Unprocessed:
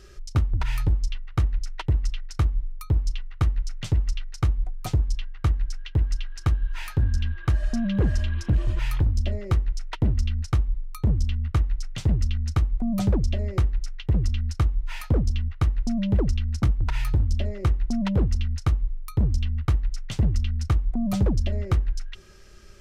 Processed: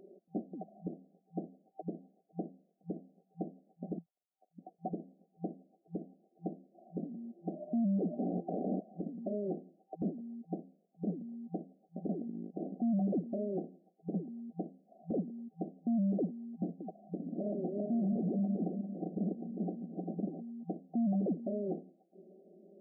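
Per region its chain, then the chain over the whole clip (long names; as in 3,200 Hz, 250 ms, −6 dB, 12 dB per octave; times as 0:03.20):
0:03.98–0:04.59: three sine waves on the formant tracks + low-shelf EQ 350 Hz −9.5 dB
0:08.19–0:08.81: wrap-around overflow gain 24 dB + highs frequency-modulated by the lows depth 0.65 ms
0:12.07–0:12.80: noise gate −24 dBFS, range −17 dB + high-pass filter 260 Hz + level that may fall only so fast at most 31 dB per second
0:17.07–0:20.43: feedback delay that plays each chunk backwards 198 ms, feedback 50%, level 0 dB + downward compressor 5 to 1, threshold −18 dBFS
whole clip: brick-wall band-pass 170–780 Hz; notch filter 490 Hz, Q 12; brickwall limiter −28 dBFS; level +1 dB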